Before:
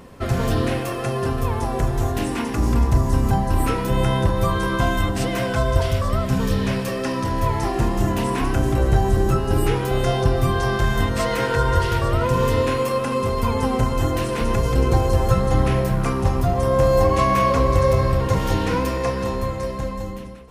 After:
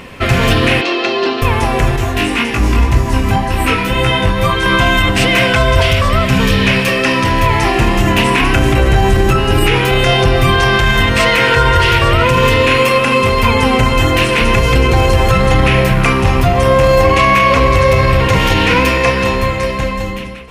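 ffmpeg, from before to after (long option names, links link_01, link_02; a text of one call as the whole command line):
ffmpeg -i in.wav -filter_complex "[0:a]asettb=1/sr,asplit=3[link_01][link_02][link_03];[link_01]atrim=end=0.814[link_04];[link_02]atrim=start=0.81:end=1.42,asetpts=PTS-STARTPTS,afade=type=in:duration=0.004:curve=qsin,afade=type=out:start_time=0.606:duration=0.004:curve=qsin,highpass=frequency=260:width=0.5412,highpass=frequency=260:width=1.3066,equalizer=frequency=340:width_type=q:width=4:gain=6,equalizer=frequency=520:width_type=q:width=4:gain=-5,equalizer=frequency=1200:width_type=q:width=4:gain=-4,equalizer=frequency=1700:width_type=q:width=4:gain=-5,equalizer=frequency=2400:width_type=q:width=4:gain=-4,equalizer=frequency=4100:width_type=q:width=4:gain=8,lowpass=frequency=5500:width=0.5412,lowpass=frequency=5500:width=1.3066[link_05];[link_03]atrim=start=1.416[link_06];[link_04][link_05]acrossfade=duration=0.004:curve1=hsin:curve2=qsin[link_07];[link_07][link_06]acrossfade=duration=0.004:curve1=qsin:curve2=hsin,asettb=1/sr,asplit=3[link_08][link_09][link_10];[link_08]atrim=end=1.964[link_11];[link_09]atrim=start=1.96:end=4.66,asetpts=PTS-STARTPTS,afade=type=in:duration=0.004:curve=qsin,afade=type=out:start_time=2.696:duration=0.004:curve=qsin,flanger=delay=17.5:depth=2.5:speed=1.9[link_12];[link_10]atrim=start=4.656[link_13];[link_11][link_12]acrossfade=duration=0.004:curve1=hsin:curve2=qsin[link_14];[link_14][link_13]acrossfade=duration=0.004:curve1=qsin:curve2=hsin,asettb=1/sr,asplit=3[link_15][link_16][link_17];[link_15]atrim=end=12.914[link_18];[link_16]atrim=start=12.91:end=13.46,asetpts=PTS-STARTPTS,afade=type=in:duration=0.004:curve=qsin,afade=type=out:start_time=0.546:duration=0.004:curve=qsin,asoftclip=type=hard:threshold=-14.5dB[link_19];[link_17]atrim=start=13.456[link_20];[link_18][link_19]acrossfade=duration=0.004:curve1=hsin:curve2=qsin[link_21];[link_21][link_20]acrossfade=duration=0.004:curve1=qsin:curve2=hsin,equalizer=frequency=2500:width_type=o:width=1.2:gain=14,alimiter=limit=-10dB:level=0:latency=1:release=27,volume=8.5dB" out.wav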